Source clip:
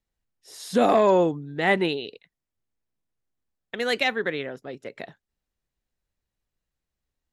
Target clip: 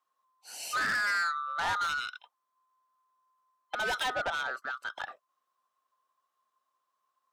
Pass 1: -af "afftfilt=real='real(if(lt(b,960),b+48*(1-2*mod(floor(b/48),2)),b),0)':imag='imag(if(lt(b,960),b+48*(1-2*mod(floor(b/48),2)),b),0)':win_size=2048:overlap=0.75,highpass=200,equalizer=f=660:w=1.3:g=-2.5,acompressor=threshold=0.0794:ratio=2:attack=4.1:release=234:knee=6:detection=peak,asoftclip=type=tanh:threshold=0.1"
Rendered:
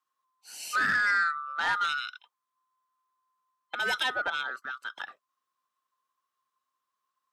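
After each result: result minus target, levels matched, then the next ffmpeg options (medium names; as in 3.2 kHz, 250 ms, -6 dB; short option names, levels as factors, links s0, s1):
500 Hz band -6.0 dB; saturation: distortion -8 dB
-af "afftfilt=real='real(if(lt(b,960),b+48*(1-2*mod(floor(b/48),2)),b),0)':imag='imag(if(lt(b,960),b+48*(1-2*mod(floor(b/48),2)),b),0)':win_size=2048:overlap=0.75,highpass=200,equalizer=f=660:w=1.3:g=7.5,acompressor=threshold=0.0794:ratio=2:attack=4.1:release=234:knee=6:detection=peak,asoftclip=type=tanh:threshold=0.1"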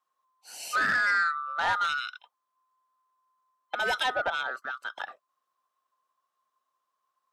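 saturation: distortion -7 dB
-af "afftfilt=real='real(if(lt(b,960),b+48*(1-2*mod(floor(b/48),2)),b),0)':imag='imag(if(lt(b,960),b+48*(1-2*mod(floor(b/48),2)),b),0)':win_size=2048:overlap=0.75,highpass=200,equalizer=f=660:w=1.3:g=7.5,acompressor=threshold=0.0794:ratio=2:attack=4.1:release=234:knee=6:detection=peak,asoftclip=type=tanh:threshold=0.0447"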